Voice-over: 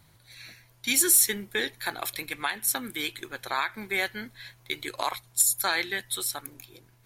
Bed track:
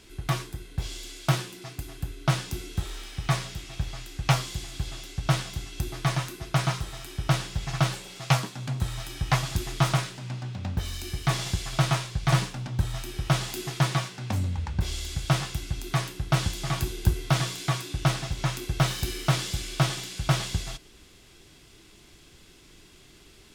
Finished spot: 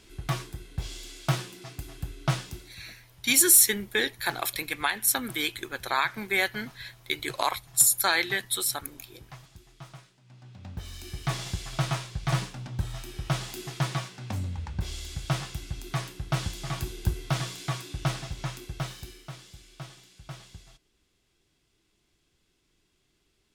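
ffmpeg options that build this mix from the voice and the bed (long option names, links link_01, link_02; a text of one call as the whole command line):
ffmpeg -i stem1.wav -i stem2.wav -filter_complex "[0:a]adelay=2400,volume=2.5dB[link_01];[1:a]volume=16dB,afade=type=out:start_time=2.33:duration=0.44:silence=0.0944061,afade=type=in:start_time=10.24:duration=1:silence=0.11885,afade=type=out:start_time=18.19:duration=1.1:silence=0.199526[link_02];[link_01][link_02]amix=inputs=2:normalize=0" out.wav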